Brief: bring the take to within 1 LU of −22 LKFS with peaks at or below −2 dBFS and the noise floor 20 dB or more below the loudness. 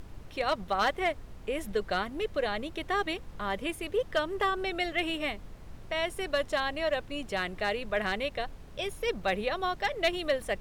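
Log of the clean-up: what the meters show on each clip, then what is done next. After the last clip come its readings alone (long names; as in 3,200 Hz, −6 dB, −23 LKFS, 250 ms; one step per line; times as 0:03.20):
share of clipped samples 0.3%; peaks flattened at −19.5 dBFS; background noise floor −47 dBFS; target noise floor −52 dBFS; integrated loudness −31.5 LKFS; sample peak −19.5 dBFS; target loudness −22.0 LKFS
→ clipped peaks rebuilt −19.5 dBFS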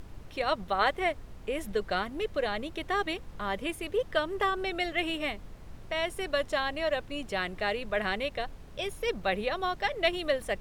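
share of clipped samples 0.0%; background noise floor −47 dBFS; target noise floor −52 dBFS
→ noise reduction from a noise print 6 dB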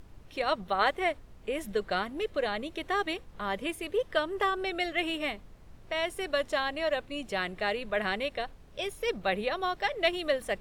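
background noise floor −53 dBFS; integrated loudness −31.5 LKFS; sample peak −13.5 dBFS; target loudness −22.0 LKFS
→ level +9.5 dB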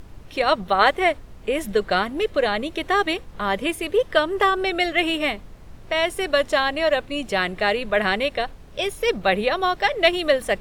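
integrated loudness −22.0 LKFS; sample peak −4.0 dBFS; background noise floor −43 dBFS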